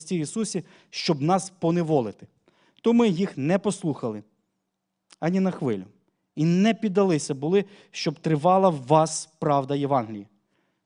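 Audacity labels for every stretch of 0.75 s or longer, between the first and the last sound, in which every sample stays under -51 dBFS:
4.230000	5.100000	silence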